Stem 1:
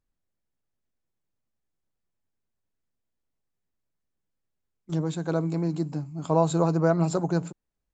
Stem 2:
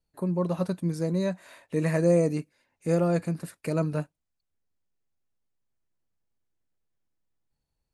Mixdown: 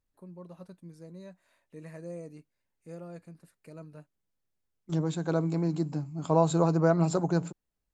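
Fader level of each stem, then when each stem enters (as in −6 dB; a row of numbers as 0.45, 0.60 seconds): −1.5, −19.5 decibels; 0.00, 0.00 seconds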